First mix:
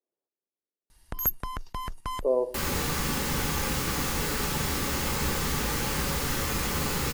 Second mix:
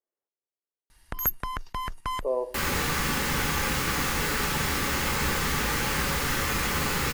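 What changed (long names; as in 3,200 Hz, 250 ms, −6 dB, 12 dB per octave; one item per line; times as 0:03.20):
speech: add low-shelf EQ 360 Hz −11.5 dB
master: add parametric band 1,800 Hz +6 dB 1.7 octaves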